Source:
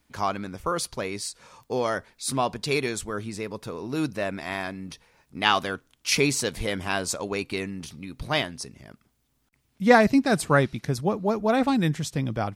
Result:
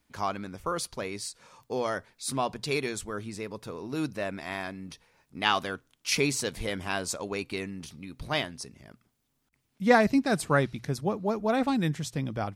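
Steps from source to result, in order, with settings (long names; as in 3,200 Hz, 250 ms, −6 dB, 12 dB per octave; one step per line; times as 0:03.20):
mains-hum notches 60/120 Hz
level −4 dB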